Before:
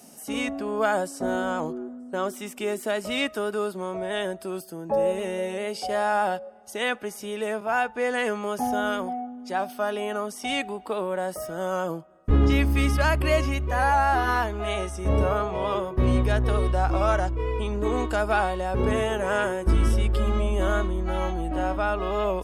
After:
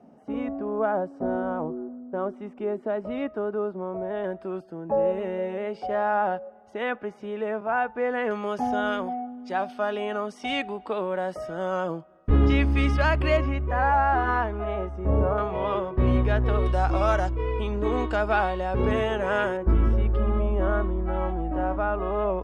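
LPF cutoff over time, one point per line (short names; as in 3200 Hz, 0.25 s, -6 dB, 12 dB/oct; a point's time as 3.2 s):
1000 Hz
from 4.24 s 1700 Hz
from 8.31 s 3800 Hz
from 13.37 s 1900 Hz
from 14.64 s 1200 Hz
from 15.38 s 2800 Hz
from 16.66 s 6500 Hz
from 17.33 s 3900 Hz
from 19.57 s 1500 Hz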